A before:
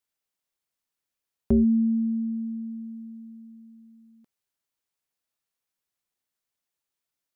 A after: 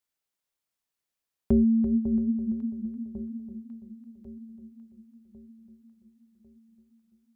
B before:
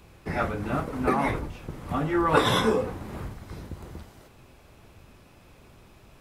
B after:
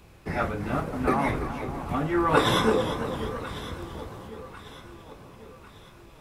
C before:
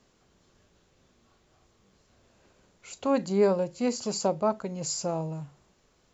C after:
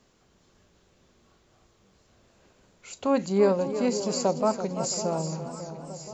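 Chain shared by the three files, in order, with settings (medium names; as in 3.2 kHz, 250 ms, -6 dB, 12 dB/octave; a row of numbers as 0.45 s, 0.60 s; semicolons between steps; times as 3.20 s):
echo whose repeats swap between lows and highs 549 ms, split 1 kHz, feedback 67%, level -11.5 dB; modulated delay 336 ms, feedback 49%, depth 66 cents, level -11 dB; normalise loudness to -27 LUFS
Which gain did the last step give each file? -1.0 dB, 0.0 dB, +1.5 dB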